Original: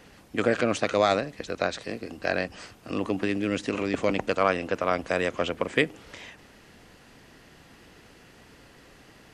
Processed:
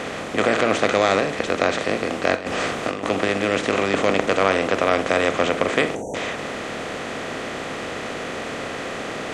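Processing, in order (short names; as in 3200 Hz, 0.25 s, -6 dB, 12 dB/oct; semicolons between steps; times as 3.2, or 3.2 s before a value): per-bin compression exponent 0.4; notches 60/120/180/240/300 Hz; 2.35–3.1 negative-ratio compressor -25 dBFS, ratio -0.5; 5.95–6.15 spectral delete 950–5700 Hz; non-linear reverb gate 90 ms flat, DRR 10.5 dB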